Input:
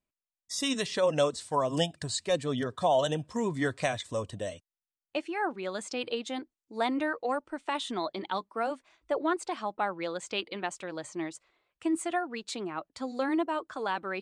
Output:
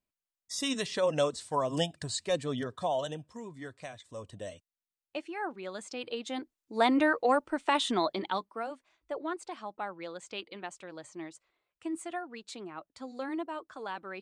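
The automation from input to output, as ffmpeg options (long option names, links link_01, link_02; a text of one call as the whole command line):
ffmpeg -i in.wav -af "volume=17dB,afade=type=out:start_time=2.42:duration=1.04:silence=0.251189,afade=type=in:start_time=4.03:duration=0.46:silence=0.354813,afade=type=in:start_time=6.08:duration=0.91:silence=0.316228,afade=type=out:start_time=7.91:duration=0.76:silence=0.251189" out.wav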